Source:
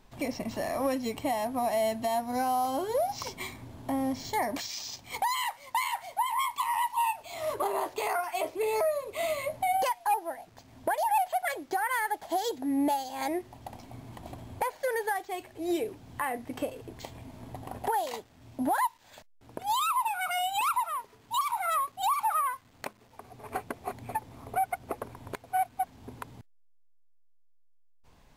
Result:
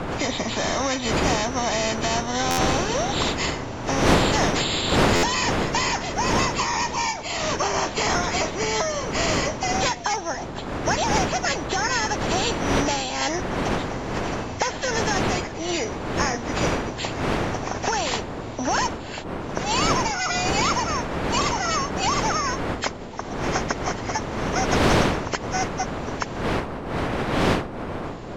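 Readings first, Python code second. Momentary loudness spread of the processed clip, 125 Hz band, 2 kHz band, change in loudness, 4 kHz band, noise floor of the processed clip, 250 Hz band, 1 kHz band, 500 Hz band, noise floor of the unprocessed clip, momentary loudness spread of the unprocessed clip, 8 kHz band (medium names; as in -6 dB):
8 LU, +20.5 dB, +11.5 dB, +7.5 dB, +14.5 dB, -33 dBFS, +10.0 dB, +4.5 dB, +8.0 dB, -58 dBFS, 16 LU, +13.5 dB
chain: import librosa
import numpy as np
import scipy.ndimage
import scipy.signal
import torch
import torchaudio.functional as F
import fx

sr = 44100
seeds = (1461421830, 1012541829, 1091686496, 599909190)

y = fx.freq_compress(x, sr, knee_hz=1700.0, ratio=1.5)
y = fx.dmg_wind(y, sr, seeds[0], corner_hz=390.0, level_db=-30.0)
y = fx.buffer_glitch(y, sr, at_s=(2.5, 5.15), block=512, repeats=6)
y = fx.spectral_comp(y, sr, ratio=2.0)
y = F.gain(torch.from_numpy(y), -2.5).numpy()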